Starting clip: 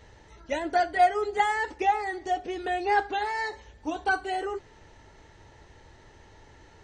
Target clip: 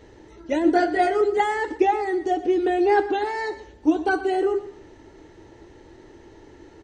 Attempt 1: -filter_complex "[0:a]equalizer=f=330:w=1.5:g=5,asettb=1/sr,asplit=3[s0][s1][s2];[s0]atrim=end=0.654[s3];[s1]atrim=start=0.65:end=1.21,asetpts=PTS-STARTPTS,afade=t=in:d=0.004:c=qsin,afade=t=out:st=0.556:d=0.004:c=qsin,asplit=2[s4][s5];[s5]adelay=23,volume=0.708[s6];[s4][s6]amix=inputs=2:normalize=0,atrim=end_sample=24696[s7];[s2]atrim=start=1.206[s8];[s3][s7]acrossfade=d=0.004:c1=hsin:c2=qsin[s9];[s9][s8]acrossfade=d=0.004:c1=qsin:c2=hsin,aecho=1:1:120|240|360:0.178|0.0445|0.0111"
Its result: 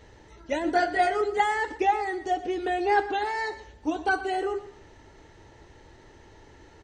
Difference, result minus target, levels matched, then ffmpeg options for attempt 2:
250 Hz band -5.0 dB
-filter_complex "[0:a]equalizer=f=330:w=1.5:g=15.5,asettb=1/sr,asplit=3[s0][s1][s2];[s0]atrim=end=0.654[s3];[s1]atrim=start=0.65:end=1.21,asetpts=PTS-STARTPTS,afade=t=in:d=0.004:c=qsin,afade=t=out:st=0.556:d=0.004:c=qsin,asplit=2[s4][s5];[s5]adelay=23,volume=0.708[s6];[s4][s6]amix=inputs=2:normalize=0,atrim=end_sample=24696[s7];[s2]atrim=start=1.206[s8];[s3][s7]acrossfade=d=0.004:c1=hsin:c2=qsin[s9];[s9][s8]acrossfade=d=0.004:c1=qsin:c2=hsin,aecho=1:1:120|240|360:0.178|0.0445|0.0111"

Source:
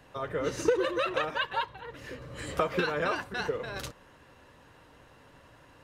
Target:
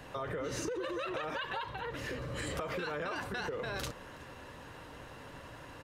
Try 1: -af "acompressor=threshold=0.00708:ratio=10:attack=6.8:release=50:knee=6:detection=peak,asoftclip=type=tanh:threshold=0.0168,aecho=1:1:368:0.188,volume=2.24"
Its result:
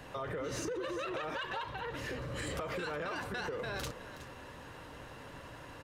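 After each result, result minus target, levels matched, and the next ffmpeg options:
saturation: distortion +20 dB; echo-to-direct +10 dB
-af "acompressor=threshold=0.00708:ratio=10:attack=6.8:release=50:knee=6:detection=peak,asoftclip=type=tanh:threshold=0.0596,aecho=1:1:368:0.188,volume=2.24"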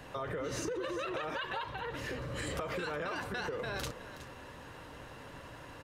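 echo-to-direct +10 dB
-af "acompressor=threshold=0.00708:ratio=10:attack=6.8:release=50:knee=6:detection=peak,asoftclip=type=tanh:threshold=0.0596,aecho=1:1:368:0.0596,volume=2.24"

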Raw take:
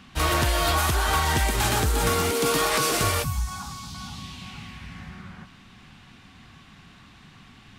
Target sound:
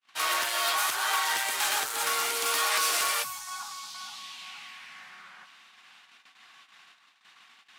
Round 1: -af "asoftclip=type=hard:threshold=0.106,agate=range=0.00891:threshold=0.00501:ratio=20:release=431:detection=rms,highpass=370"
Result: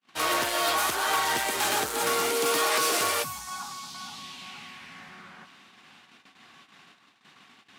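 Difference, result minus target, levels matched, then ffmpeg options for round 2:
500 Hz band +8.5 dB
-af "asoftclip=type=hard:threshold=0.106,agate=range=0.00891:threshold=0.00501:ratio=20:release=431:detection=rms,highpass=960"

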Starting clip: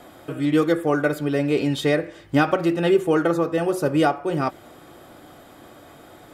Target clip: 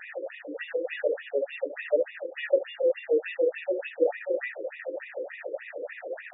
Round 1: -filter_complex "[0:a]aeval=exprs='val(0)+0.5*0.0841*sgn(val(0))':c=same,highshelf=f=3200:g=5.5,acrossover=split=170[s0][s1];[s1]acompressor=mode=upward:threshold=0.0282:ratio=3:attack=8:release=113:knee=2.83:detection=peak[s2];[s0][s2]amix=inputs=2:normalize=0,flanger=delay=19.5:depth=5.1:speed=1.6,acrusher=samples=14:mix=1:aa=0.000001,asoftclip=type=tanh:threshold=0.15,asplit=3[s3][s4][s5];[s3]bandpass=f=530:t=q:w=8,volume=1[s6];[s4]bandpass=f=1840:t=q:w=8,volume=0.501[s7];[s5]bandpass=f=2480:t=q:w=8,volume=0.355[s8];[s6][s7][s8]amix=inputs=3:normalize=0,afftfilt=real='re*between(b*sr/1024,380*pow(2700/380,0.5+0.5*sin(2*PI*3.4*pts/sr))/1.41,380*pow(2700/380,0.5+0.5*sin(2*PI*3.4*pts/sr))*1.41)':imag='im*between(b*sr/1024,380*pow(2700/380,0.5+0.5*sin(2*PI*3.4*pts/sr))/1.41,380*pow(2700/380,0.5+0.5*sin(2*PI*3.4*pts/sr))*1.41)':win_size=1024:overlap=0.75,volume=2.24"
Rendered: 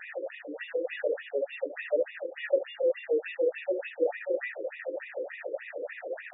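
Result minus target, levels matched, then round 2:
saturation: distortion +13 dB
-filter_complex "[0:a]aeval=exprs='val(0)+0.5*0.0841*sgn(val(0))':c=same,highshelf=f=3200:g=5.5,acrossover=split=170[s0][s1];[s1]acompressor=mode=upward:threshold=0.0282:ratio=3:attack=8:release=113:knee=2.83:detection=peak[s2];[s0][s2]amix=inputs=2:normalize=0,flanger=delay=19.5:depth=5.1:speed=1.6,acrusher=samples=14:mix=1:aa=0.000001,asoftclip=type=tanh:threshold=0.473,asplit=3[s3][s4][s5];[s3]bandpass=f=530:t=q:w=8,volume=1[s6];[s4]bandpass=f=1840:t=q:w=8,volume=0.501[s7];[s5]bandpass=f=2480:t=q:w=8,volume=0.355[s8];[s6][s7][s8]amix=inputs=3:normalize=0,afftfilt=real='re*between(b*sr/1024,380*pow(2700/380,0.5+0.5*sin(2*PI*3.4*pts/sr))/1.41,380*pow(2700/380,0.5+0.5*sin(2*PI*3.4*pts/sr))*1.41)':imag='im*between(b*sr/1024,380*pow(2700/380,0.5+0.5*sin(2*PI*3.4*pts/sr))/1.41,380*pow(2700/380,0.5+0.5*sin(2*PI*3.4*pts/sr))*1.41)':win_size=1024:overlap=0.75,volume=2.24"

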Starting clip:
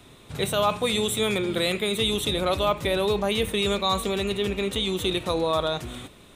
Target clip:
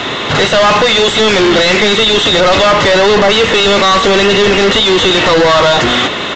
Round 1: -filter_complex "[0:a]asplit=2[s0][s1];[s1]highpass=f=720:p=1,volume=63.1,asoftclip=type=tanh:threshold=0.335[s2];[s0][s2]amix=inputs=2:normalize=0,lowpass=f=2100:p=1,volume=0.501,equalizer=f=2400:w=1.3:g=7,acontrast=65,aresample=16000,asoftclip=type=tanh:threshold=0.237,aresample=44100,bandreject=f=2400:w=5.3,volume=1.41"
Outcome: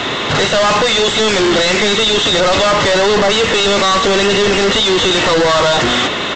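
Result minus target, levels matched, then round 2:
saturation: distortion +13 dB
-filter_complex "[0:a]asplit=2[s0][s1];[s1]highpass=f=720:p=1,volume=63.1,asoftclip=type=tanh:threshold=0.335[s2];[s0][s2]amix=inputs=2:normalize=0,lowpass=f=2100:p=1,volume=0.501,equalizer=f=2400:w=1.3:g=7,acontrast=65,aresample=16000,asoftclip=type=tanh:threshold=0.668,aresample=44100,bandreject=f=2400:w=5.3,volume=1.41"

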